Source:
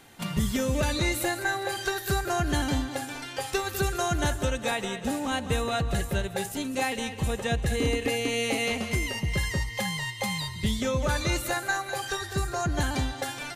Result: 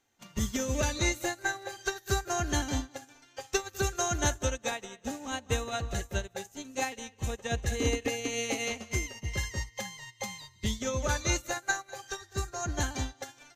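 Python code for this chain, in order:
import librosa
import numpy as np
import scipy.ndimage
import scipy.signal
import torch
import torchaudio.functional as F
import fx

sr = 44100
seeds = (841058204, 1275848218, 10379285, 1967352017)

y = fx.graphic_eq_31(x, sr, hz=(160, 6300, 10000), db=(-11, 11, -9))
y = fx.upward_expand(y, sr, threshold_db=-38.0, expansion=2.5)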